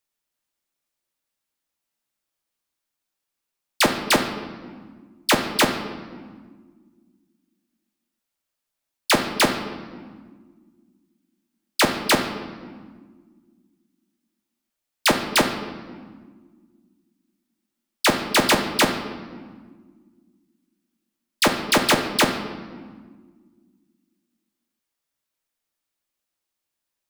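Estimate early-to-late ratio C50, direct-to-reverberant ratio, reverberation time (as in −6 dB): 7.5 dB, 4.5 dB, 1.7 s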